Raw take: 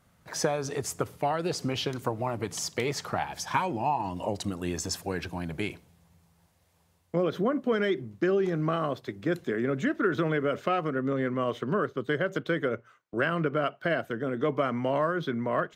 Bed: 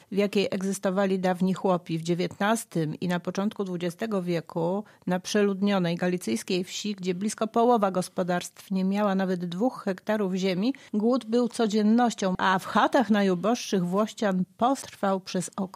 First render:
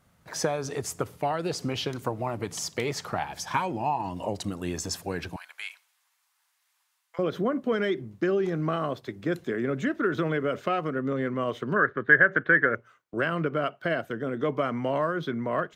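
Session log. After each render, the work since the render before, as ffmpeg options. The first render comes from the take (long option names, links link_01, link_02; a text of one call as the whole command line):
ffmpeg -i in.wav -filter_complex "[0:a]asettb=1/sr,asplit=3[link_01][link_02][link_03];[link_01]atrim=end=5.364[link_04];[link_02]atrim=start=5.36:end=7.19,asetpts=PTS-STARTPTS,afade=type=in:duration=0.004:curve=qsin,afade=type=out:start_time=1.826:duration=0.004:curve=qsin,highpass=frequency=1100:width=0.5412,highpass=frequency=1100:width=1.3066[link_05];[link_03]atrim=start=7.186[link_06];[link_04][link_05]acrossfade=duration=0.004:curve1=hsin:curve2=qsin[link_07];[link_07][link_06]acrossfade=duration=0.004:curve1=qsin:curve2=hsin,asettb=1/sr,asplit=3[link_08][link_09][link_10];[link_08]atrim=end=11.764[link_11];[link_09]atrim=start=11.76:end=12.75,asetpts=PTS-STARTPTS,afade=type=in:duration=0.004:curve=qsin,afade=type=out:start_time=0.986:duration=0.004:curve=qsin,lowpass=frequency=1700:width_type=q:width=9.6[link_12];[link_10]atrim=start=12.746[link_13];[link_11][link_12]acrossfade=duration=0.004:curve1=hsin:curve2=qsin[link_14];[link_14][link_13]acrossfade=duration=0.004:curve1=qsin:curve2=hsin" out.wav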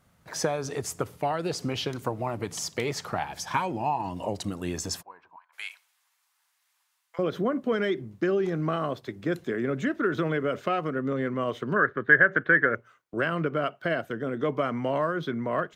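ffmpeg -i in.wav -filter_complex "[0:a]asplit=3[link_01][link_02][link_03];[link_01]afade=type=out:start_time=5.01:duration=0.02[link_04];[link_02]bandpass=frequency=1000:width_type=q:width=8.3,afade=type=in:start_time=5.01:duration=0.02,afade=type=out:start_time=5.52:duration=0.02[link_05];[link_03]afade=type=in:start_time=5.52:duration=0.02[link_06];[link_04][link_05][link_06]amix=inputs=3:normalize=0" out.wav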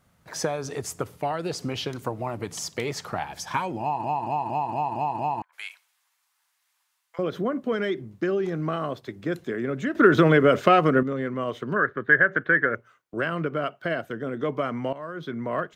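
ffmpeg -i in.wav -filter_complex "[0:a]asplit=11[link_01][link_02][link_03][link_04][link_05][link_06][link_07][link_08][link_09][link_10][link_11];[link_01]atrim=end=4.042[link_12];[link_02]atrim=start=3.808:end=4.042[link_13];[link_03]atrim=start=3.808:end=4.042[link_14];[link_04]atrim=start=3.808:end=4.042[link_15];[link_05]atrim=start=3.808:end=4.042[link_16];[link_06]atrim=start=3.808:end=4.042[link_17];[link_07]atrim=start=3.808:end=4.042[link_18];[link_08]atrim=start=5.418:end=9.952[link_19];[link_09]atrim=start=9.948:end=11.032,asetpts=PTS-STARTPTS,volume=10dB[link_20];[link_10]atrim=start=11.028:end=14.93,asetpts=PTS-STARTPTS,afade=type=out:start_time=3.898:duration=0.004:curve=hsin:silence=0.149624[link_21];[link_11]atrim=start=14.93,asetpts=PTS-STARTPTS,afade=type=in:duration=0.51:silence=0.149624[link_22];[link_12][link_13]acrossfade=duration=0.004:curve1=hsin:curve2=hsin[link_23];[link_23][link_14]acrossfade=duration=0.004:curve1=hsin:curve2=hsin[link_24];[link_24][link_15]acrossfade=duration=0.004:curve1=hsin:curve2=hsin[link_25];[link_25][link_16]acrossfade=duration=0.004:curve1=hsin:curve2=hsin[link_26];[link_26][link_17]acrossfade=duration=0.004:curve1=hsin:curve2=hsin[link_27];[link_27][link_18]acrossfade=duration=0.004:curve1=hsin:curve2=hsin[link_28];[link_28][link_19]acrossfade=duration=0.004:curve1=hsin:curve2=hsin[link_29];[link_29][link_20]acrossfade=duration=0.004:curve1=hsin:curve2=hsin[link_30];[link_21][link_22]concat=n=2:v=0:a=1[link_31];[link_30][link_31]acrossfade=duration=0.004:curve1=hsin:curve2=hsin" out.wav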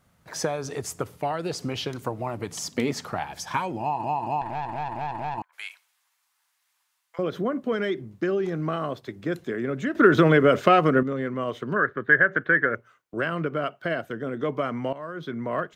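ffmpeg -i in.wav -filter_complex "[0:a]asettb=1/sr,asplit=3[link_01][link_02][link_03];[link_01]atrim=end=2.654[link_04];[link_02]atrim=start=2.65:end=3.07,asetpts=PTS-STARTPTS,afade=type=in:duration=0.004:curve=qsin,afade=type=out:start_time=0.416:duration=0.004:curve=qsin,equalizer=frequency=250:width=3:gain=14[link_05];[link_03]atrim=start=3.066[link_06];[link_04][link_05]acrossfade=duration=0.004:curve1=hsin:curve2=qsin[link_07];[link_07][link_06]acrossfade=duration=0.004:curve1=qsin:curve2=hsin,asettb=1/sr,asplit=3[link_08][link_09][link_10];[link_08]atrim=end=4.414[link_11];[link_09]atrim=start=4.41:end=5.38,asetpts=PTS-STARTPTS,afade=type=in:duration=0.004:curve=qsin,afade=type=out:start_time=0.966:duration=0.004:curve=qsin,aeval=exprs='(tanh(17.8*val(0)+0.5)-tanh(0.5))/17.8':channel_layout=same[link_12];[link_10]atrim=start=5.376[link_13];[link_11][link_12]acrossfade=duration=0.004:curve1=hsin:curve2=qsin[link_14];[link_14][link_13]acrossfade=duration=0.004:curve1=qsin:curve2=hsin" out.wav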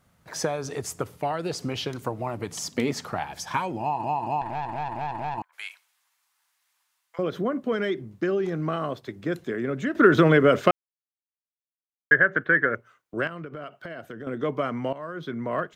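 ffmpeg -i in.wav -filter_complex "[0:a]asettb=1/sr,asplit=3[link_01][link_02][link_03];[link_01]atrim=end=13.274[link_04];[link_02]atrim=start=13.27:end=14.27,asetpts=PTS-STARTPTS,afade=type=in:duration=0.004:curve=qsin,afade=type=out:start_time=0.996:duration=0.004:curve=qsin,acompressor=threshold=-34dB:ratio=5:attack=3.2:release=140:knee=1:detection=peak[link_05];[link_03]atrim=start=14.266[link_06];[link_04][link_05]acrossfade=duration=0.004:curve1=hsin:curve2=qsin[link_07];[link_07][link_06]acrossfade=duration=0.004:curve1=qsin:curve2=hsin,asplit=3[link_08][link_09][link_10];[link_08]atrim=end=10.71,asetpts=PTS-STARTPTS,afade=type=out:start_time=10.706:duration=0.004:curve=hsin[link_11];[link_09]atrim=start=10.71:end=12.11,asetpts=PTS-STARTPTS,volume=0[link_12];[link_10]atrim=start=12.11,asetpts=PTS-STARTPTS,afade=type=in:duration=0.004:curve=hsin[link_13];[link_11][link_12][link_13]concat=n=3:v=0:a=1" out.wav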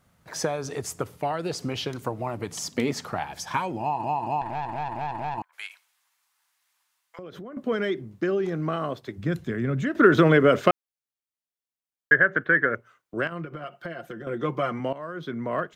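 ffmpeg -i in.wav -filter_complex "[0:a]asettb=1/sr,asplit=3[link_01][link_02][link_03];[link_01]atrim=end=5.664[link_04];[link_02]atrim=start=5.66:end=7.57,asetpts=PTS-STARTPTS,afade=type=in:duration=0.004:curve=qsin,afade=type=out:start_time=1.906:duration=0.004:curve=qsin,acompressor=threshold=-37dB:ratio=6:attack=3.2:release=140:knee=1:detection=peak[link_05];[link_03]atrim=start=7.566[link_06];[link_04][link_05]acrossfade=duration=0.004:curve1=hsin:curve2=qsin[link_07];[link_07][link_06]acrossfade=duration=0.004:curve1=qsin:curve2=hsin,asplit=3[link_08][link_09][link_10];[link_08]afade=type=out:start_time=9.17:duration=0.02[link_11];[link_09]asubboost=boost=4.5:cutoff=170,afade=type=in:start_time=9.17:duration=0.02,afade=type=out:start_time=9.83:duration=0.02[link_12];[link_10]afade=type=in:start_time=9.83:duration=0.02[link_13];[link_11][link_12][link_13]amix=inputs=3:normalize=0,asettb=1/sr,asplit=3[link_14][link_15][link_16];[link_14]atrim=end=13.314[link_17];[link_15]atrim=start=13.31:end=14.8,asetpts=PTS-STARTPTS,afade=type=in:duration=0.004:curve=qsin,afade=type=out:start_time=1.486:duration=0.004:curve=qsin,aecho=1:1:5.7:0.65,atrim=end_sample=65709[link_18];[link_16]atrim=start=14.796[link_19];[link_17][link_18]acrossfade=duration=0.004:curve1=hsin:curve2=qsin[link_20];[link_20][link_19]acrossfade=duration=0.004:curve1=qsin:curve2=hsin" out.wav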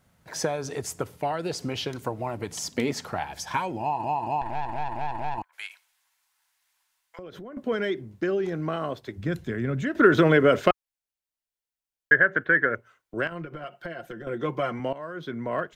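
ffmpeg -i in.wav -af "bandreject=frequency=1200:width=11,asubboost=boost=3.5:cutoff=68" out.wav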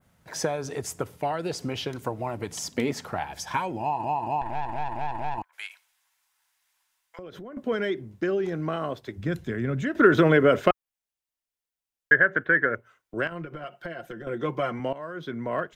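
ffmpeg -i in.wav -af "bandreject=frequency=4300:width=28,adynamicequalizer=threshold=0.00708:dfrequency=5400:dqfactor=0.71:tfrequency=5400:tqfactor=0.71:attack=5:release=100:ratio=0.375:range=2.5:mode=cutabove:tftype=bell" out.wav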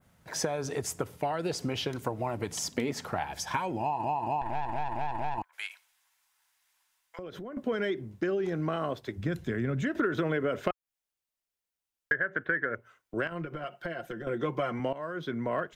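ffmpeg -i in.wav -af "acompressor=threshold=-26dB:ratio=6" out.wav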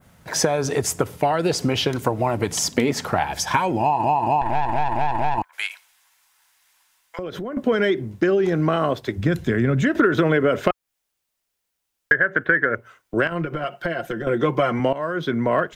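ffmpeg -i in.wav -af "volume=11dB,alimiter=limit=-2dB:level=0:latency=1" out.wav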